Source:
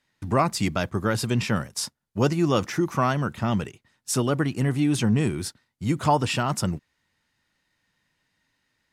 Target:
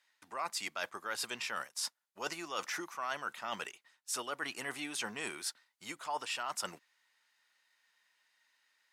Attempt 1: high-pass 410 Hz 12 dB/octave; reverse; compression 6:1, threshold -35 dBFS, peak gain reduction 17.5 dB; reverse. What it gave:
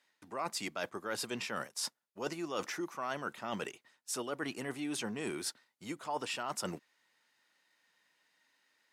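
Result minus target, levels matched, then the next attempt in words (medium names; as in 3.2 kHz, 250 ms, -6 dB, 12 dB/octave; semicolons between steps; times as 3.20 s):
500 Hz band +5.0 dB
high-pass 880 Hz 12 dB/octave; reverse; compression 6:1, threshold -35 dBFS, peak gain reduction 14.5 dB; reverse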